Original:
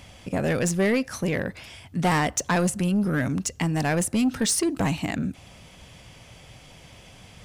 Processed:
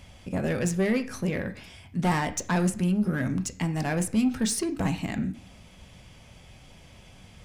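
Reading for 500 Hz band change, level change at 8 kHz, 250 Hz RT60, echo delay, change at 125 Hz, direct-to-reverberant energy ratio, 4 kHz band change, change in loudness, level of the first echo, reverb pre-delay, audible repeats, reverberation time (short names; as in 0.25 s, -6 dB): -4.0 dB, -5.5 dB, 0.60 s, none, -1.5 dB, 7.0 dB, -5.0 dB, -3.0 dB, none, 3 ms, none, 0.55 s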